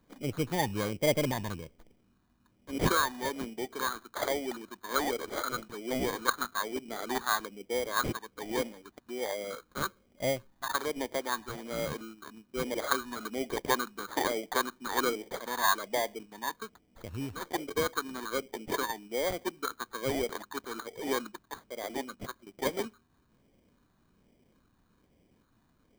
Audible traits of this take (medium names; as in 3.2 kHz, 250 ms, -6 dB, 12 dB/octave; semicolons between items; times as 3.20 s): phasing stages 6, 1.2 Hz, lowest notch 520–1200 Hz; aliases and images of a low sample rate 2.7 kHz, jitter 0%